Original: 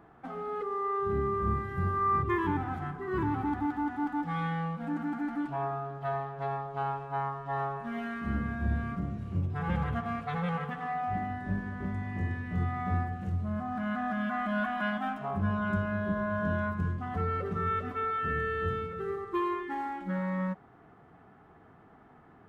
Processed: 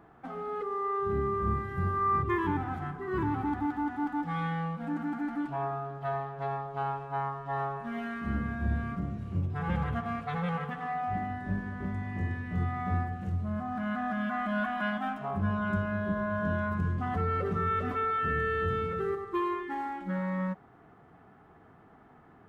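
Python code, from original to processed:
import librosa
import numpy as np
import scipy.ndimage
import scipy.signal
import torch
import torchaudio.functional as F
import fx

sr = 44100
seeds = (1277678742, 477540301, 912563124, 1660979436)

y = fx.env_flatten(x, sr, amount_pct=50, at=(16.71, 19.15))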